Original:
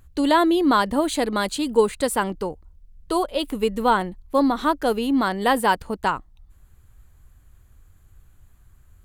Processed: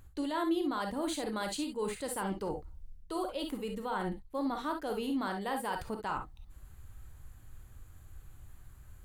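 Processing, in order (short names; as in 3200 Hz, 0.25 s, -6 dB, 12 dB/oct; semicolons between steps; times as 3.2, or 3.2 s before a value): reverse; compressor 12:1, threshold -31 dBFS, peak gain reduction 20 dB; reverse; limiter -27 dBFS, peak gain reduction 8.5 dB; non-linear reverb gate 80 ms rising, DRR 4 dB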